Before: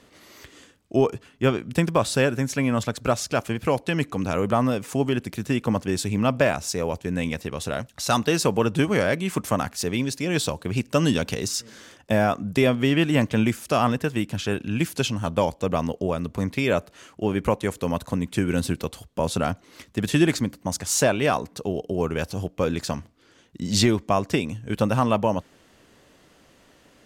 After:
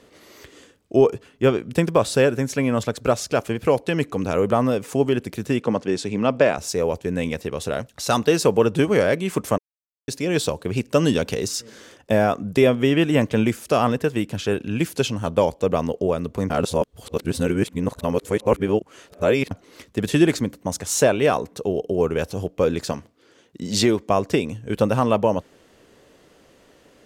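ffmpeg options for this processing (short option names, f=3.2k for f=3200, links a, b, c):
-filter_complex "[0:a]asettb=1/sr,asplit=3[a][b][c];[a]atrim=end=5.604[d];[b]atrim=start=5.6:end=6.58,asetpts=PTS-STARTPTS,afade=t=in:d=0.004:c=qsin,afade=t=out:st=0.976:d=0.004:c=qsin,highpass=150,lowpass=6.5k[e];[c]atrim=start=6.576[f];[d][e]acrossfade=d=0.004:c1=hsin:c2=qsin[g];[g][f]acrossfade=d=0.004:c1=qsin:c2=hsin,asettb=1/sr,asplit=3[h][i][j];[h]atrim=end=12.594[k];[i]atrim=start=12.59:end=13.25,asetpts=PTS-STARTPTS,afade=t=in:d=0.004:c=qsin,afade=t=out:st=0.656:d=0.004:c=qsin,asuperstop=centerf=4400:order=4:qfactor=7.6[l];[j]atrim=start=13.246[m];[k][l]acrossfade=d=0.004:c1=hsin:c2=qsin[n];[n][m]acrossfade=d=0.004:c1=qsin:c2=hsin,asettb=1/sr,asplit=3[o][p][q];[o]atrim=end=20.374[r];[p]atrim=start=20.37:end=22.37,asetpts=PTS-STARTPTS,afade=t=in:d=0.004:c=qsin,afade=t=out:st=1.996:d=0.004:c=qsin,bandreject=f=4.7k:w=13[s];[q]atrim=start=22.366[t];[r][s]acrossfade=d=0.004:c1=hsin:c2=qsin[u];[u][t]acrossfade=d=0.004:c1=qsin:c2=hsin,asettb=1/sr,asplit=3[v][w][x];[v]atrim=end=22.924[y];[w]atrim=start=22.92:end=24.1,asetpts=PTS-STARTPTS,afade=t=in:d=0.004:c=qsin,afade=t=out:st=1.176:d=0.004:c=qsin,highpass=f=150:p=1[z];[x]atrim=start=24.096[aa];[y][z]acrossfade=d=0.004:c1=hsin:c2=qsin[ab];[ab][aa]acrossfade=d=0.004:c1=qsin:c2=hsin,asplit=5[ac][ad][ae][af][ag];[ac]atrim=end=9.58,asetpts=PTS-STARTPTS,afade=t=out:st=9.576:d=0.004:c=hsin[ah];[ad]atrim=start=9.58:end=10.08,asetpts=PTS-STARTPTS,volume=0[ai];[ae]atrim=start=10.08:end=16.502,asetpts=PTS-STARTPTS,afade=t=in:d=0.004:c=hsin[aj];[af]atrim=start=16.498:end=19.512,asetpts=PTS-STARTPTS,areverse[ak];[ag]atrim=start=19.508[al];[ah][ai][aj]concat=n=3:v=0:a=1[am];[am][ak]acrossfade=d=0.004:c1=hsin:c2=hsin[an];[an][al]acrossfade=d=0.004:c1=hsin:c2=hsin,equalizer=f=450:w=1.7:g=6.5"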